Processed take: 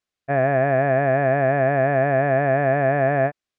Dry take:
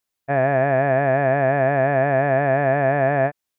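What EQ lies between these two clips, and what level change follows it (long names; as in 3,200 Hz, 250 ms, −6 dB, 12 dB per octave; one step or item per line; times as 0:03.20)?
high-frequency loss of the air 83 metres
notch filter 910 Hz, Q 6.5
0.0 dB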